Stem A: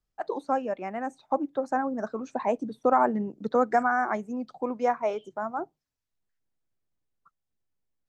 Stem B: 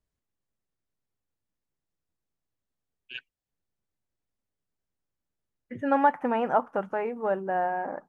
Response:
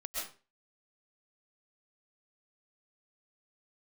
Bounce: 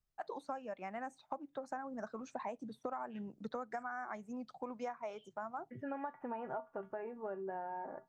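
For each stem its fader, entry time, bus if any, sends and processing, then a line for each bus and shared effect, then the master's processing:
-5.0 dB, 0.00 s, no send, peaking EQ 350 Hz -8 dB 1.4 oct
0.0 dB, 0.00 s, no send, treble shelf 2.2 kHz -12 dB; feedback comb 130 Hz, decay 0.18 s, harmonics odd, mix 80%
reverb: none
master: compression 10:1, threshold -38 dBFS, peak gain reduction 15 dB

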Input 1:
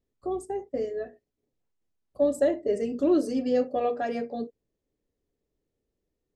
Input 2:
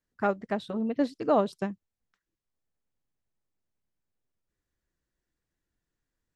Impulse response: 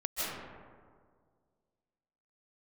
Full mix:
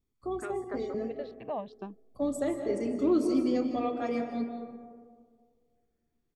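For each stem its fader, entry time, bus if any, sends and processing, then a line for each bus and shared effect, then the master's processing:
-5.0 dB, 0.00 s, send -9 dB, comb 0.9 ms, depth 58%
-3.0 dB, 0.20 s, no send, low-pass 4.3 kHz 24 dB/octave; compression 2:1, threshold -30 dBFS, peak gain reduction 7 dB; stepped phaser 2.7 Hz 200–1900 Hz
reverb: on, RT60 1.9 s, pre-delay 115 ms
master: none

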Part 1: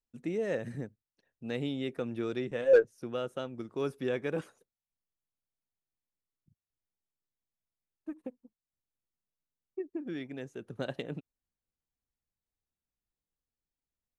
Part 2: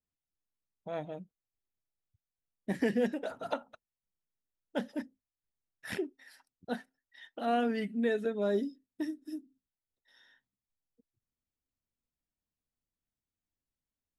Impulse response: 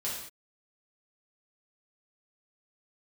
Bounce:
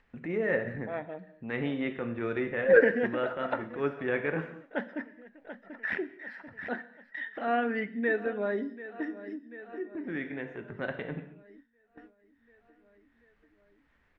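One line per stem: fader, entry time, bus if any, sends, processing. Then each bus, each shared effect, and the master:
+0.5 dB, 0.00 s, send -6.5 dB, no echo send, transient shaper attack -8 dB, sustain -4 dB
-0.5 dB, 0.00 s, send -16 dB, echo send -16.5 dB, peaking EQ 120 Hz -12.5 dB 0.73 oct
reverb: on, pre-delay 3 ms
echo: feedback delay 739 ms, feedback 48%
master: gate with hold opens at -57 dBFS; upward compressor, threshold -36 dBFS; resonant low-pass 1.9 kHz, resonance Q 2.8

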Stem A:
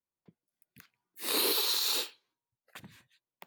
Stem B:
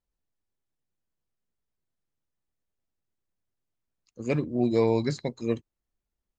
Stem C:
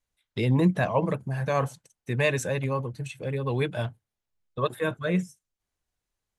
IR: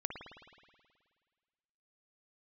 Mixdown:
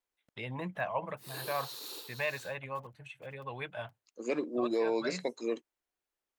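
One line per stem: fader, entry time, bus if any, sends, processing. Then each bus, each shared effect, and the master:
-15.0 dB, 0.00 s, no send, echo send -6 dB, peaking EQ 2.2 kHz -4 dB; bit crusher 8-bit
-0.5 dB, 0.00 s, no send, no echo send, high-pass 300 Hz 24 dB/octave
-19.0 dB, 0.00 s, no send, no echo send, high-order bell 1.4 kHz +13 dB 2.9 oct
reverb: none
echo: delay 469 ms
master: peak limiter -22 dBFS, peak gain reduction 7.5 dB

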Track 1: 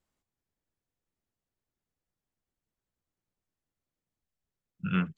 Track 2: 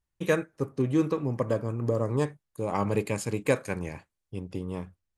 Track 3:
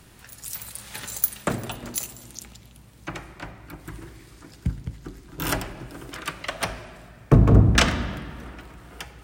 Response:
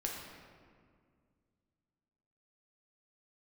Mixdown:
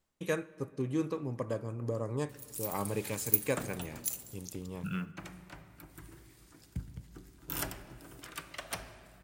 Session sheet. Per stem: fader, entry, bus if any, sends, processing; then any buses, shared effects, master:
+2.5 dB, 0.00 s, send -18 dB, compression 5:1, threshold -32 dBFS, peak gain reduction 9 dB; short-mantissa float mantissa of 4-bit; auto duck -7 dB, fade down 0.30 s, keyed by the second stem
-9.0 dB, 0.00 s, send -16.5 dB, treble shelf 3.9 kHz +5.5 dB; expander -47 dBFS
-14.5 dB, 2.10 s, send -13.5 dB, gate with hold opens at -38 dBFS; treble shelf 7.2 kHz +10.5 dB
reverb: on, RT60 2.0 s, pre-delay 7 ms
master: none

